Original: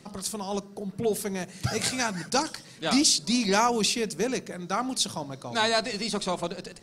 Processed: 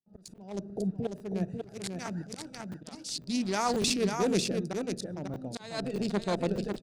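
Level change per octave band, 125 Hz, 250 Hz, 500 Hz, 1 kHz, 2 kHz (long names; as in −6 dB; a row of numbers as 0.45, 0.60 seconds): −0.5, −2.5, −3.5, −8.0, −9.5 decibels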